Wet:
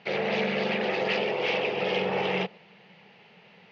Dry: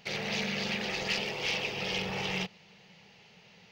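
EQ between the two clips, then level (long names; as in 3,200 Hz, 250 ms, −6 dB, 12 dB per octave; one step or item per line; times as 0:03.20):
dynamic equaliser 510 Hz, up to +7 dB, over −53 dBFS, Q 1
band-pass filter 180–2,800 Hz
high-frequency loss of the air 55 metres
+5.5 dB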